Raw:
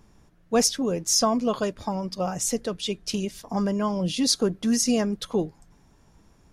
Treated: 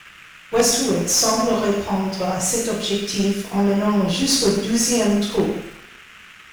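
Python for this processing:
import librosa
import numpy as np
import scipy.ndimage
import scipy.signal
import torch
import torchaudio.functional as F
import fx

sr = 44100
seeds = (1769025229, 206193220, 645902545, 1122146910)

p1 = x + fx.echo_single(x, sr, ms=102, db=-11.0, dry=0)
p2 = fx.rev_double_slope(p1, sr, seeds[0], early_s=0.66, late_s=2.4, knee_db=-25, drr_db=-7.0)
p3 = fx.cheby_harmonics(p2, sr, harmonics=(3, 5, 6), levels_db=(-14, -17, -25), full_scale_db=-1.5)
p4 = fx.quant_dither(p3, sr, seeds[1], bits=6, dither='none')
p5 = p3 + (p4 * 10.0 ** (-4.5 / 20.0))
p6 = fx.dmg_noise_band(p5, sr, seeds[2], low_hz=1200.0, high_hz=3000.0, level_db=-35.0)
p7 = np.sign(p6) * np.maximum(np.abs(p6) - 10.0 ** (-40.5 / 20.0), 0.0)
y = p7 * 10.0 ** (-5.5 / 20.0)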